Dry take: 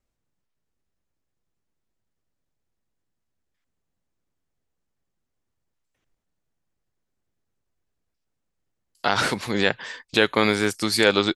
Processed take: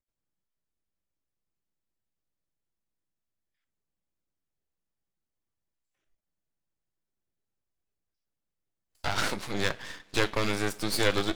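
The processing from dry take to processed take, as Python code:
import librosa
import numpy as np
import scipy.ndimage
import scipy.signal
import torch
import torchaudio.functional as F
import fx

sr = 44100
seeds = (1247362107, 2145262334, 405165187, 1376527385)

y = fx.rev_double_slope(x, sr, seeds[0], early_s=0.3, late_s=2.4, knee_db=-20, drr_db=14.0)
y = np.maximum(y, 0.0)
y = fx.noise_reduce_blind(y, sr, reduce_db=7)
y = y * 10.0 ** (-2.0 / 20.0)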